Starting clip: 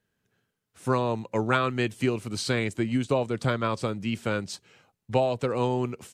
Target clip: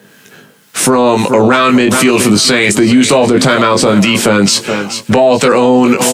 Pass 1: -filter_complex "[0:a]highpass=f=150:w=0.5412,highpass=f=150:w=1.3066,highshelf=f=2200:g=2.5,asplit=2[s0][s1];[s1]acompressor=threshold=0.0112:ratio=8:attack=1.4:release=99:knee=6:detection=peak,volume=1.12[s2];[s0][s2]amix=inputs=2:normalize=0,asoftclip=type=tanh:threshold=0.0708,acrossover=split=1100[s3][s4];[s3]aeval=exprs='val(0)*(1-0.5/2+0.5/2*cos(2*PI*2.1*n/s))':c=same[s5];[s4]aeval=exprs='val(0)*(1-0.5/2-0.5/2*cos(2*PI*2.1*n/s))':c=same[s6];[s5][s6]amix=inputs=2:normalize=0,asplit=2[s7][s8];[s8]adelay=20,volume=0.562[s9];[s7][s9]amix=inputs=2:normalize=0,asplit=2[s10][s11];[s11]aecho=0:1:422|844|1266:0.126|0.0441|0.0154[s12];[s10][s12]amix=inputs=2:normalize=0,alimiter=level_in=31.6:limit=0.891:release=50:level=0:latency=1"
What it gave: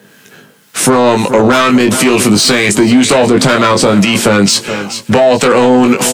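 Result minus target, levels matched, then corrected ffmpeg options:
saturation: distortion +14 dB
-filter_complex "[0:a]highpass=f=150:w=0.5412,highpass=f=150:w=1.3066,highshelf=f=2200:g=2.5,asplit=2[s0][s1];[s1]acompressor=threshold=0.0112:ratio=8:attack=1.4:release=99:knee=6:detection=peak,volume=1.12[s2];[s0][s2]amix=inputs=2:normalize=0,asoftclip=type=tanh:threshold=0.266,acrossover=split=1100[s3][s4];[s3]aeval=exprs='val(0)*(1-0.5/2+0.5/2*cos(2*PI*2.1*n/s))':c=same[s5];[s4]aeval=exprs='val(0)*(1-0.5/2-0.5/2*cos(2*PI*2.1*n/s))':c=same[s6];[s5][s6]amix=inputs=2:normalize=0,asplit=2[s7][s8];[s8]adelay=20,volume=0.562[s9];[s7][s9]amix=inputs=2:normalize=0,asplit=2[s10][s11];[s11]aecho=0:1:422|844|1266:0.126|0.0441|0.0154[s12];[s10][s12]amix=inputs=2:normalize=0,alimiter=level_in=31.6:limit=0.891:release=50:level=0:latency=1"

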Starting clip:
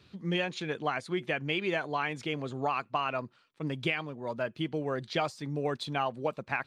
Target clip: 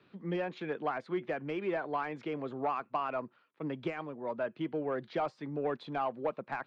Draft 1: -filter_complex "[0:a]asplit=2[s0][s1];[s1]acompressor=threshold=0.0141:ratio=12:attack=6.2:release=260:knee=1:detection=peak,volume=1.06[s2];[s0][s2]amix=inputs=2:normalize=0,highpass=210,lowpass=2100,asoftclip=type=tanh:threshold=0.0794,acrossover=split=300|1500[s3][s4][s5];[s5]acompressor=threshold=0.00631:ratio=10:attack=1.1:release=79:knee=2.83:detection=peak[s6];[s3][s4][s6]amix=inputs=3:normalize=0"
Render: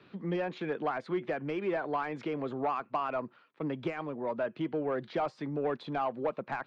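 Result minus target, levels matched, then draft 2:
compression: peak gain reduction +14.5 dB
-filter_complex "[0:a]highpass=210,lowpass=2100,asoftclip=type=tanh:threshold=0.0794,acrossover=split=300|1500[s0][s1][s2];[s2]acompressor=threshold=0.00631:ratio=10:attack=1.1:release=79:knee=2.83:detection=peak[s3];[s0][s1][s3]amix=inputs=3:normalize=0"

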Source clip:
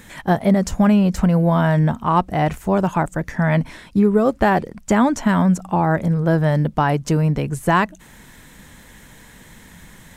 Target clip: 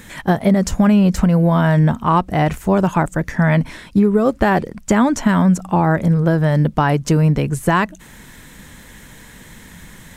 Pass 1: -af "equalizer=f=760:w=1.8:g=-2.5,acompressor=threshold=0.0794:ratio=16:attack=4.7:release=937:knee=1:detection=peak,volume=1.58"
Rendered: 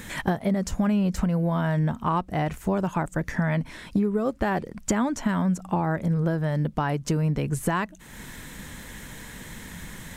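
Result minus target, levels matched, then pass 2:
compression: peak gain reduction +10.5 dB
-af "equalizer=f=760:w=1.8:g=-2.5,acompressor=threshold=0.282:ratio=16:attack=4.7:release=937:knee=1:detection=peak,volume=1.58"

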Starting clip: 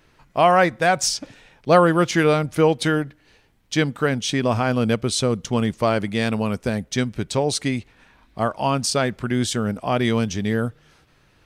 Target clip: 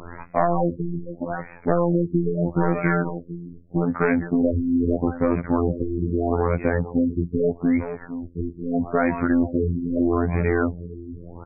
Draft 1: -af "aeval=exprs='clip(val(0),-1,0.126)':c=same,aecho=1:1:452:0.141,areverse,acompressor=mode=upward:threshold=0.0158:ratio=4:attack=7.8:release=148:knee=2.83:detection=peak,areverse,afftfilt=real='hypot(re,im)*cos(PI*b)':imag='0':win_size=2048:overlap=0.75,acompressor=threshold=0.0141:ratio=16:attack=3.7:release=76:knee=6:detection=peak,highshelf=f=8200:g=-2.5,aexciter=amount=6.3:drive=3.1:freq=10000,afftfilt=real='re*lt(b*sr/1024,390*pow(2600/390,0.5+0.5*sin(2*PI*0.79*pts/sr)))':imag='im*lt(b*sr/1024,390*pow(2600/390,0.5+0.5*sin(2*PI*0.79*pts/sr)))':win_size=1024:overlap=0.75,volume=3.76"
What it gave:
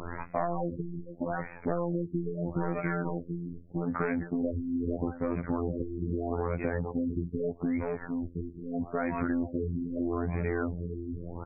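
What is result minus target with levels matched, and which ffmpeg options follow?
compression: peak gain reduction +11 dB
-af "aeval=exprs='clip(val(0),-1,0.126)':c=same,aecho=1:1:452:0.141,areverse,acompressor=mode=upward:threshold=0.0158:ratio=4:attack=7.8:release=148:knee=2.83:detection=peak,areverse,afftfilt=real='hypot(re,im)*cos(PI*b)':imag='0':win_size=2048:overlap=0.75,acompressor=threshold=0.0531:ratio=16:attack=3.7:release=76:knee=6:detection=peak,highshelf=f=8200:g=-2.5,aexciter=amount=6.3:drive=3.1:freq=10000,afftfilt=real='re*lt(b*sr/1024,390*pow(2600/390,0.5+0.5*sin(2*PI*0.79*pts/sr)))':imag='im*lt(b*sr/1024,390*pow(2600/390,0.5+0.5*sin(2*PI*0.79*pts/sr)))':win_size=1024:overlap=0.75,volume=3.76"

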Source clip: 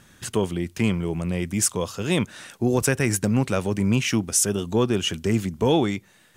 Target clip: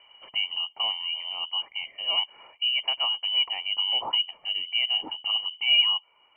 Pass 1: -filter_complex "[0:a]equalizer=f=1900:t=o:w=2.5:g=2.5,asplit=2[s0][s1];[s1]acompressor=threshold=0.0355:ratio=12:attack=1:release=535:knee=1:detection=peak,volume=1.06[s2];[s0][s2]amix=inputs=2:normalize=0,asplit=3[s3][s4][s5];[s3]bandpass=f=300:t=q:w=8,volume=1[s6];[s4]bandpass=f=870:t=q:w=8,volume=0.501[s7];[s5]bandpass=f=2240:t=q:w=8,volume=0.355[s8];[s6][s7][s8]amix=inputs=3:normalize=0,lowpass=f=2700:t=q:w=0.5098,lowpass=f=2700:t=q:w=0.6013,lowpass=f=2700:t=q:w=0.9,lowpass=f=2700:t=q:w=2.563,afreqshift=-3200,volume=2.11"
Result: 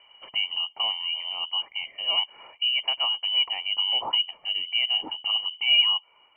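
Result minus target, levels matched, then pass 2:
compression: peak gain reduction -10 dB
-filter_complex "[0:a]equalizer=f=1900:t=o:w=2.5:g=2.5,asplit=2[s0][s1];[s1]acompressor=threshold=0.01:ratio=12:attack=1:release=535:knee=1:detection=peak,volume=1.06[s2];[s0][s2]amix=inputs=2:normalize=0,asplit=3[s3][s4][s5];[s3]bandpass=f=300:t=q:w=8,volume=1[s6];[s4]bandpass=f=870:t=q:w=8,volume=0.501[s7];[s5]bandpass=f=2240:t=q:w=8,volume=0.355[s8];[s6][s7][s8]amix=inputs=3:normalize=0,lowpass=f=2700:t=q:w=0.5098,lowpass=f=2700:t=q:w=0.6013,lowpass=f=2700:t=q:w=0.9,lowpass=f=2700:t=q:w=2.563,afreqshift=-3200,volume=2.11"

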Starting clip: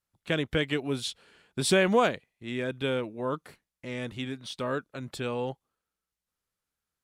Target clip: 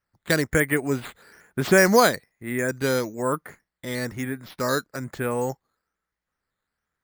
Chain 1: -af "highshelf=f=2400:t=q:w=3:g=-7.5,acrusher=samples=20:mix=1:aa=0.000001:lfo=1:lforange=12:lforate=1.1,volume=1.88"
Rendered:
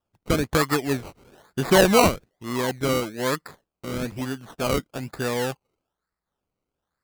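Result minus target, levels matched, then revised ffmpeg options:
decimation with a swept rate: distortion +11 dB
-af "highshelf=f=2400:t=q:w=3:g=-7.5,acrusher=samples=6:mix=1:aa=0.000001:lfo=1:lforange=3.6:lforate=1.1,volume=1.88"

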